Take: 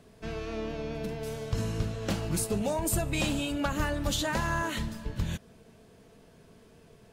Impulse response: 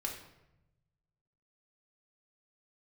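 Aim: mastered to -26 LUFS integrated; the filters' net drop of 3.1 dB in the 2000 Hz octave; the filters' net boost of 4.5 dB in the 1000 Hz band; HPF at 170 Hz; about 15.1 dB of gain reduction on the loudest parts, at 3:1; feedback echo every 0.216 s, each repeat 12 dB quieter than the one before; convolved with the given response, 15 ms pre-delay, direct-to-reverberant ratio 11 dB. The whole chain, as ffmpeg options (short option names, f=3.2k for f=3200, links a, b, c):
-filter_complex "[0:a]highpass=170,equalizer=f=1k:t=o:g=6.5,equalizer=f=2k:t=o:g=-6.5,acompressor=threshold=-46dB:ratio=3,aecho=1:1:216|432|648:0.251|0.0628|0.0157,asplit=2[a][b];[1:a]atrim=start_sample=2205,adelay=15[c];[b][c]afir=irnorm=-1:irlink=0,volume=-12dB[d];[a][d]amix=inputs=2:normalize=0,volume=18dB"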